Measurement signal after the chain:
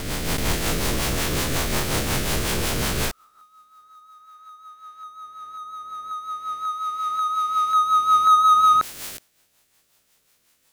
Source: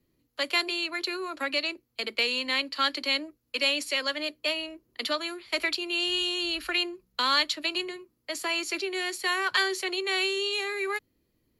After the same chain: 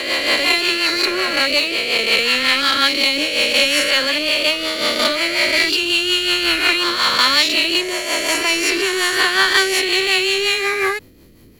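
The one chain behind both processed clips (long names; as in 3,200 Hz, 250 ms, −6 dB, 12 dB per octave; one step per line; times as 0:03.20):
peak hold with a rise ahead of every peak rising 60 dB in 2.41 s
power curve on the samples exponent 0.7
rotating-speaker cabinet horn 5.5 Hz
level +5.5 dB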